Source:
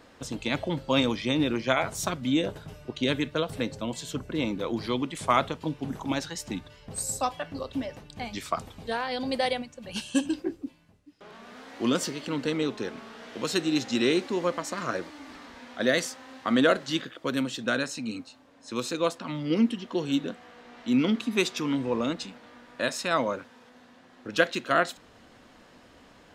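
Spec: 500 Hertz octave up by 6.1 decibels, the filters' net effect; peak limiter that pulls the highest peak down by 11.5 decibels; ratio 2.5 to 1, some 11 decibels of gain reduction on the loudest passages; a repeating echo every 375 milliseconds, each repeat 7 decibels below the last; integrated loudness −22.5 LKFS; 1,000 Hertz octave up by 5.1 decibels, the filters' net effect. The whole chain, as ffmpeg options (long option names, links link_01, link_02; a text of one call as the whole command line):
ffmpeg -i in.wav -af "equalizer=frequency=500:width_type=o:gain=6,equalizer=frequency=1000:width_type=o:gain=5,acompressor=threshold=-29dB:ratio=2.5,alimiter=limit=-23dB:level=0:latency=1,aecho=1:1:375|750|1125|1500|1875:0.447|0.201|0.0905|0.0407|0.0183,volume=11.5dB" out.wav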